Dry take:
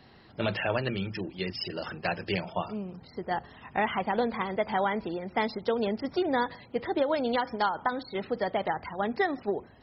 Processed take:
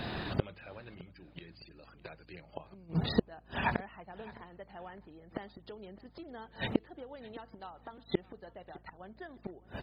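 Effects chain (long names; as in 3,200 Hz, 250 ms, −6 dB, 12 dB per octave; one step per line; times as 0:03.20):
gate with flip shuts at −30 dBFS, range −37 dB
mains hum 60 Hz, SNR 22 dB
pitch shifter −1.5 semitones
on a send: repeating echo 610 ms, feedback 30%, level −21 dB
on the sum: level +17 dB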